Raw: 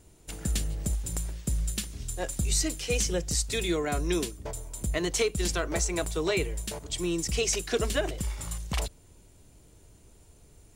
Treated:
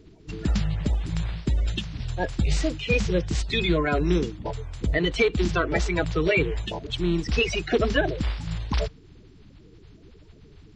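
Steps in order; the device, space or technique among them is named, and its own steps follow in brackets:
clip after many re-uploads (low-pass filter 4,100 Hz 24 dB per octave; spectral magnitudes quantised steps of 30 dB)
level +6.5 dB

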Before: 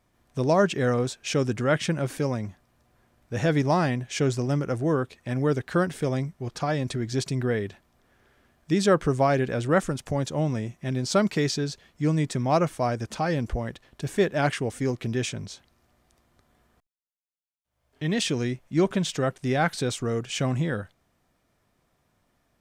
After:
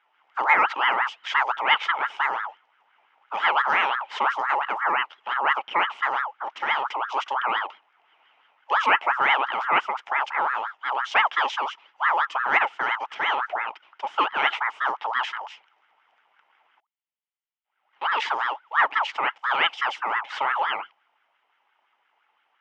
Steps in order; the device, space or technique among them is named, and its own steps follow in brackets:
voice changer toy (ring modulator whose carrier an LFO sweeps 1,100 Hz, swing 40%, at 5.8 Hz; loudspeaker in its box 490–4,600 Hz, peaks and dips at 540 Hz −4 dB, 870 Hz +8 dB, 1,300 Hz +4 dB, 2,100 Hz +7 dB, 3,000 Hz +10 dB, 4,300 Hz −10 dB)

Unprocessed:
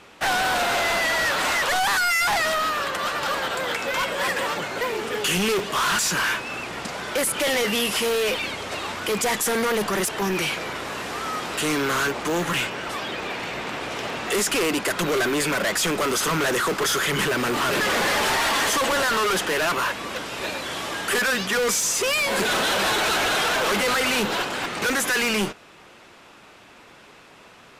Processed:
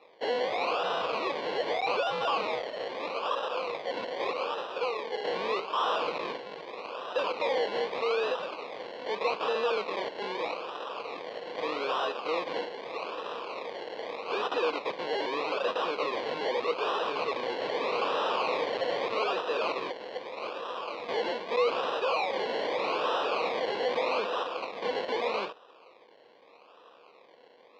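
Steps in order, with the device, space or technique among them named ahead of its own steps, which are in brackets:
circuit-bent sampling toy (sample-and-hold swept by an LFO 28×, swing 60% 0.81 Hz; loudspeaker in its box 480–4,300 Hz, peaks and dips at 490 Hz +10 dB, 1,100 Hz +7 dB, 1,700 Hz −3 dB, 2,500 Hz +7 dB, 4,100 Hz +6 dB)
level −8.5 dB

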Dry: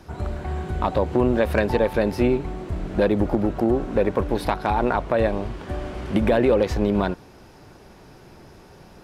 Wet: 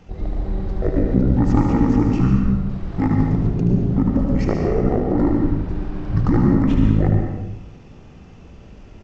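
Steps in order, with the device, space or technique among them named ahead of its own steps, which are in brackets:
0:02.71–0:03.47: tilt shelving filter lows −3.5 dB
monster voice (pitch shifter −11.5 semitones; low-shelf EQ 110 Hz +5 dB; single-tap delay 76 ms −6.5 dB; convolution reverb RT60 0.95 s, pre-delay 108 ms, DRR 2.5 dB)

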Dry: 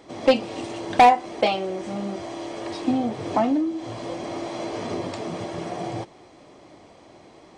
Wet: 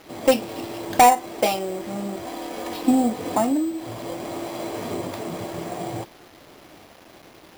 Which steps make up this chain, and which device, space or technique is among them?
0:02.25–0:03.35: comb filter 4 ms, depth 76%
early 8-bit sampler (sample-rate reduction 8,100 Hz, jitter 0%; bit reduction 8 bits)

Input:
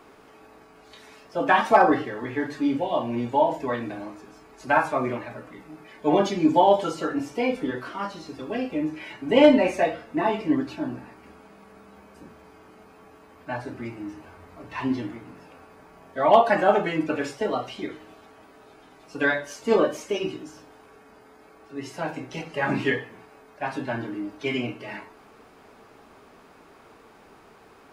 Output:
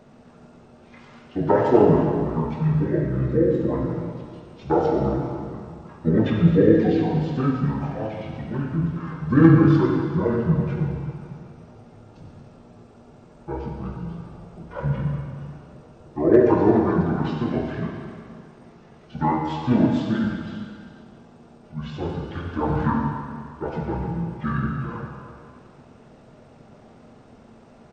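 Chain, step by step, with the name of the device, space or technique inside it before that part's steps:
monster voice (pitch shifter −10.5 semitones; low-shelf EQ 170 Hz +4 dB; convolution reverb RT60 2.0 s, pre-delay 47 ms, DRR 1.5 dB)

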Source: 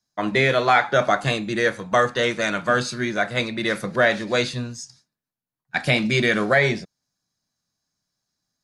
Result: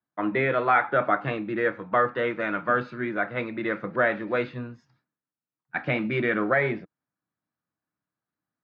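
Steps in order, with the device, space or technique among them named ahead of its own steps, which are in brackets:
bass cabinet (loudspeaker in its box 78–2,400 Hz, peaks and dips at 310 Hz +8 dB, 490 Hz +3 dB, 920 Hz +3 dB, 1,300 Hz +6 dB)
high-shelf EQ 4,400 Hz +6.5 dB
level −7 dB

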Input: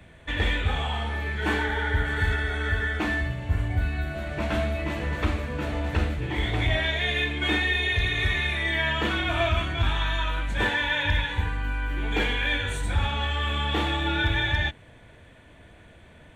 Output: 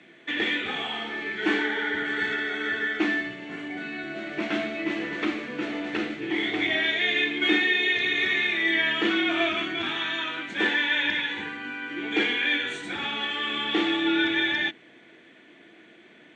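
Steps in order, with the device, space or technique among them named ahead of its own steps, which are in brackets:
television speaker (loudspeaker in its box 210–6,700 Hz, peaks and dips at 340 Hz +9 dB, 560 Hz −7 dB, 950 Hz −7 dB, 2,100 Hz +5 dB, 3,100 Hz +3 dB)
0:03.33–0:04.04: high-pass filter 140 Hz 24 dB per octave

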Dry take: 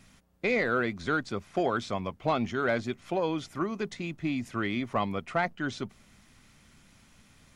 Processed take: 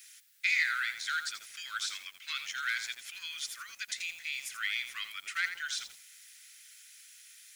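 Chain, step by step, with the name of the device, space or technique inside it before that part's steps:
turntable without a phono preamp (RIAA equalisation recording; white noise bed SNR 33 dB)
Butterworth high-pass 1,500 Hz 48 dB per octave
feedback echo at a low word length 84 ms, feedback 35%, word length 8 bits, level −9 dB

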